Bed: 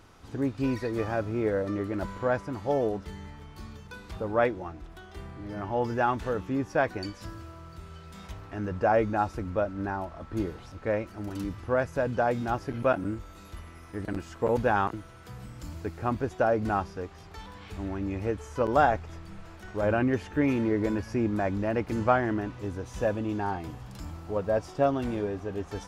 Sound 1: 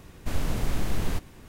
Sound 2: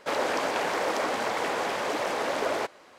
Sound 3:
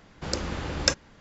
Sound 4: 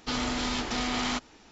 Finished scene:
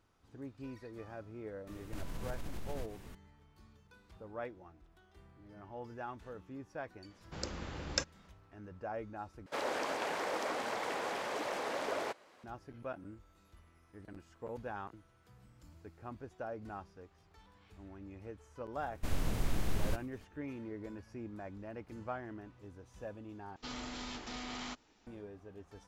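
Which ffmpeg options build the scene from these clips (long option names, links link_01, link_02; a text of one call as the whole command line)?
ffmpeg -i bed.wav -i cue0.wav -i cue1.wav -i cue2.wav -i cue3.wav -filter_complex "[1:a]asplit=2[link_01][link_02];[0:a]volume=-18dB[link_03];[link_01]acompressor=threshold=-33dB:ratio=6:attack=3.2:release=140:knee=1:detection=peak[link_04];[link_02]agate=range=-33dB:threshold=-43dB:ratio=3:release=100:detection=peak[link_05];[link_03]asplit=3[link_06][link_07][link_08];[link_06]atrim=end=9.464[link_09];[2:a]atrim=end=2.98,asetpts=PTS-STARTPTS,volume=-9dB[link_10];[link_07]atrim=start=12.436:end=23.564[link_11];[4:a]atrim=end=1.51,asetpts=PTS-STARTPTS,volume=-13.5dB[link_12];[link_08]atrim=start=25.066[link_13];[link_04]atrim=end=1.48,asetpts=PTS-STARTPTS,volume=-4dB,afade=type=in:duration=0.004:curve=hsin,afade=type=out:start_time=1.476:duration=0.004:curve=hsin,adelay=1670[link_14];[3:a]atrim=end=1.2,asetpts=PTS-STARTPTS,volume=-11dB,afade=type=in:duration=0.004:curve=hsin,afade=type=out:start_time=1.196:duration=0.004:curve=hsin,adelay=7100[link_15];[link_05]atrim=end=1.48,asetpts=PTS-STARTPTS,volume=-6.5dB,afade=type=in:duration=0.004:curve=hsin,afade=type=out:start_time=1.476:duration=0.004:curve=hsin,adelay=18770[link_16];[link_09][link_10]acrossfade=duration=0.004:curve1=hsin:curve2=hsin[link_17];[link_17][link_11]acrossfade=duration=0.004:curve1=hsin:curve2=hsin[link_18];[link_18][link_12]acrossfade=duration=0.004:curve1=hsin:curve2=hsin[link_19];[link_19][link_13]acrossfade=duration=0.004:curve1=hsin:curve2=hsin[link_20];[link_20][link_14][link_15][link_16]amix=inputs=4:normalize=0" out.wav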